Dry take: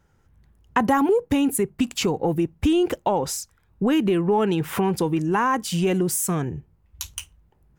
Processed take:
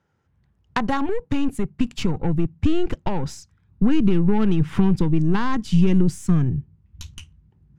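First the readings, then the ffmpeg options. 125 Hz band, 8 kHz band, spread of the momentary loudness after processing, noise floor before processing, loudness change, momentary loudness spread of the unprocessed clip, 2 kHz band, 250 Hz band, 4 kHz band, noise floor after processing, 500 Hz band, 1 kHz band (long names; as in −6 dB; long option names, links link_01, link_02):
+7.0 dB, below −10 dB, 10 LU, −63 dBFS, +0.5 dB, 12 LU, −3.0 dB, +2.0 dB, −4.5 dB, −65 dBFS, −5.0 dB, −5.5 dB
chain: -filter_complex "[0:a]highpass=120,lowpass=5300,asplit=2[link_01][link_02];[link_02]asoftclip=type=tanh:threshold=-15.5dB,volume=-4dB[link_03];[link_01][link_03]amix=inputs=2:normalize=0,aeval=exprs='0.596*(cos(1*acos(clip(val(0)/0.596,-1,1)))-cos(1*PI/2))+0.188*(cos(3*acos(clip(val(0)/0.596,-1,1)))-cos(3*PI/2))+0.0376*(cos(5*acos(clip(val(0)/0.596,-1,1)))-cos(5*PI/2))+0.0133*(cos(8*acos(clip(val(0)/0.596,-1,1)))-cos(8*PI/2))':channel_layout=same,asubboost=boost=11.5:cutoff=170"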